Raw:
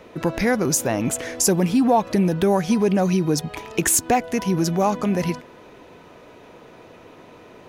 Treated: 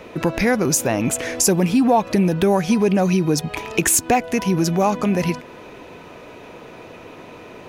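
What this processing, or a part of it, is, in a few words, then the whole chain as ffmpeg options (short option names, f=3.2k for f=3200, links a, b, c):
parallel compression: -filter_complex "[0:a]equalizer=f=2.5k:w=5.8:g=4.5,asplit=2[a][b];[b]acompressor=threshold=-29dB:ratio=6,volume=-0.5dB[c];[a][c]amix=inputs=2:normalize=0"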